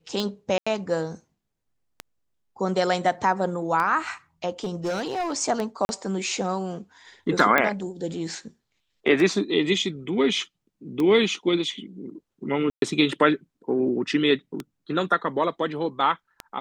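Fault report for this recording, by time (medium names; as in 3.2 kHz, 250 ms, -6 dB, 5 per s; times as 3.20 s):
tick 33 1/3 rpm -15 dBFS
0.58–0.67 s: dropout 85 ms
4.64–5.33 s: clipped -23 dBFS
5.85–5.89 s: dropout 41 ms
7.58 s: pop -7 dBFS
12.70–12.82 s: dropout 122 ms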